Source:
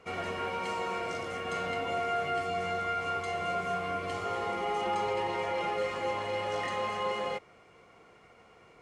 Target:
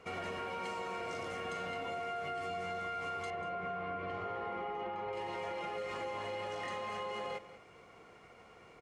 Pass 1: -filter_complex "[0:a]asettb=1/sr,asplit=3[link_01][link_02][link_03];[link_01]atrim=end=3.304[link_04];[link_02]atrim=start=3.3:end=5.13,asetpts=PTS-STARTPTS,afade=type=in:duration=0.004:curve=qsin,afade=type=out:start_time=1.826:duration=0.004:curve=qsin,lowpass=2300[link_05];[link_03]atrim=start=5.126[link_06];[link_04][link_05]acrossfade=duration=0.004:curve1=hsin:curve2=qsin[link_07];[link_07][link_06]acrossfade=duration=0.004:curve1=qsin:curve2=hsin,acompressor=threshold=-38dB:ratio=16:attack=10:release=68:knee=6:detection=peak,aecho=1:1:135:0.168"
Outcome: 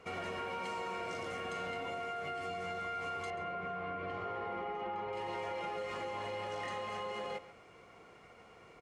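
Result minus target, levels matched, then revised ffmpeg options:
echo 55 ms early
-filter_complex "[0:a]asettb=1/sr,asplit=3[link_01][link_02][link_03];[link_01]atrim=end=3.304[link_04];[link_02]atrim=start=3.3:end=5.13,asetpts=PTS-STARTPTS,afade=type=in:duration=0.004:curve=qsin,afade=type=out:start_time=1.826:duration=0.004:curve=qsin,lowpass=2300[link_05];[link_03]atrim=start=5.126[link_06];[link_04][link_05]acrossfade=duration=0.004:curve1=hsin:curve2=qsin[link_07];[link_07][link_06]acrossfade=duration=0.004:curve1=qsin:curve2=hsin,acompressor=threshold=-38dB:ratio=16:attack=10:release=68:knee=6:detection=peak,aecho=1:1:190:0.168"

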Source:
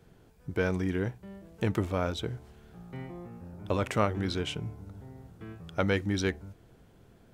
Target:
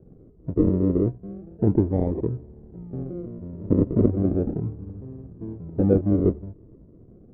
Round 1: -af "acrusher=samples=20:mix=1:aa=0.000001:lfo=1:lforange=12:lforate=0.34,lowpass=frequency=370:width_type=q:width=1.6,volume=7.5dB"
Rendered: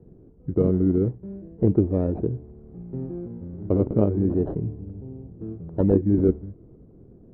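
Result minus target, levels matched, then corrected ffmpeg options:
sample-and-hold swept by an LFO: distortion −7 dB
-af "acrusher=samples=44:mix=1:aa=0.000001:lfo=1:lforange=26.4:lforate=0.34,lowpass=frequency=370:width_type=q:width=1.6,volume=7.5dB"

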